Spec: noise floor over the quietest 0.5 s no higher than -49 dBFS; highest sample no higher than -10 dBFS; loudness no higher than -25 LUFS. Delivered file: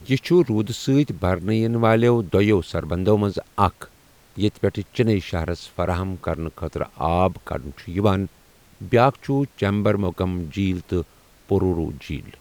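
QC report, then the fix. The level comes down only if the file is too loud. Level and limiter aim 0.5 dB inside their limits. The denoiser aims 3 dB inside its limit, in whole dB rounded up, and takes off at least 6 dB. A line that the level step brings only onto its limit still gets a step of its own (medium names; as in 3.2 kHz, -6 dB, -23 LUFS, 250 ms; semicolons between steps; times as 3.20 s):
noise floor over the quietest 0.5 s -53 dBFS: pass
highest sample -3.0 dBFS: fail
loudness -22.0 LUFS: fail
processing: trim -3.5 dB; peak limiter -10.5 dBFS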